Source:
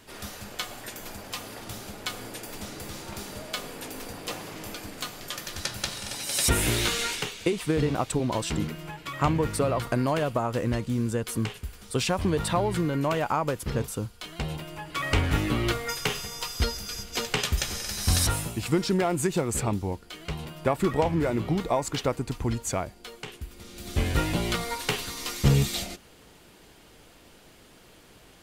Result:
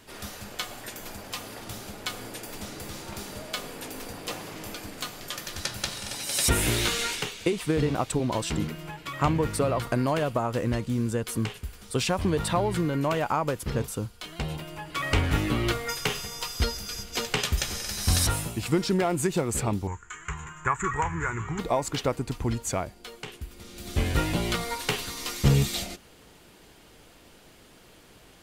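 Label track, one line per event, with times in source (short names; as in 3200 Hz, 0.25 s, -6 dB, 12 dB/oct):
19.870000	21.590000	EQ curve 110 Hz 0 dB, 280 Hz -15 dB, 410 Hz -6 dB, 600 Hz -20 dB, 1000 Hz +6 dB, 1700 Hz +9 dB, 4900 Hz -21 dB, 7000 Hz +15 dB, 10000 Hz -21 dB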